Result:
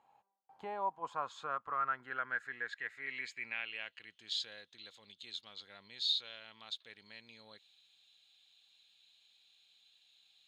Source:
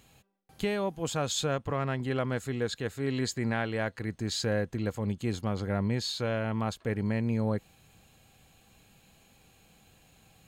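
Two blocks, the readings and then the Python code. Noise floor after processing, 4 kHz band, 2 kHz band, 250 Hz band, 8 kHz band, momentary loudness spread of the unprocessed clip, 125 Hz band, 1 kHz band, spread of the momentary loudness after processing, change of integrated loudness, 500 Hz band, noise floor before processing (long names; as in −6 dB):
−74 dBFS, −1.5 dB, −3.0 dB, −29.0 dB, −19.0 dB, 4 LU, below −30 dB, −2.0 dB, 18 LU, −8.0 dB, −18.0 dB, −62 dBFS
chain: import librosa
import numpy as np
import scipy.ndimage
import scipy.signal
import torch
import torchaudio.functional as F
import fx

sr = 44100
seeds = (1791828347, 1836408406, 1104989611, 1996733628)

y = fx.filter_sweep_bandpass(x, sr, from_hz=880.0, to_hz=3700.0, start_s=0.73, end_s=4.61, q=8.0)
y = F.gain(torch.from_numpy(y), 7.5).numpy()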